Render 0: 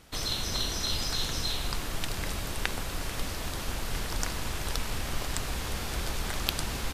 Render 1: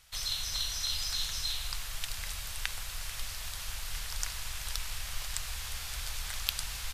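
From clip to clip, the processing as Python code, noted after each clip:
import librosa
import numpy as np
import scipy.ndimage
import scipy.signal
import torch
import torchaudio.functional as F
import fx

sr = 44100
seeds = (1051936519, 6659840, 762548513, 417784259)

y = fx.tone_stack(x, sr, knobs='10-0-10')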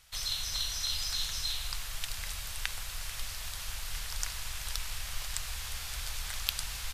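y = x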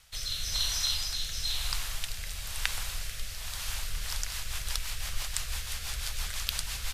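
y = fx.rotary_switch(x, sr, hz=1.0, then_hz=6.0, switch_at_s=3.62)
y = y * librosa.db_to_amplitude(5.0)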